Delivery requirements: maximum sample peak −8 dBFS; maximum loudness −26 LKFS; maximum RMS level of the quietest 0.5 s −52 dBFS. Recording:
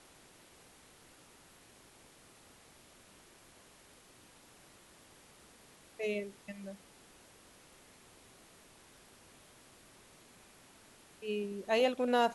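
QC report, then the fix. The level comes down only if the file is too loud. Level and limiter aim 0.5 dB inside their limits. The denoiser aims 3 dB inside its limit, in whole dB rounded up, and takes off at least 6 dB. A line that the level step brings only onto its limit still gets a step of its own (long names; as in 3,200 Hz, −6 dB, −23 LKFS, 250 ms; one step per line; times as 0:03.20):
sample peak −17.0 dBFS: in spec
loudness −35.0 LKFS: in spec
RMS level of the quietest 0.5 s −60 dBFS: in spec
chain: no processing needed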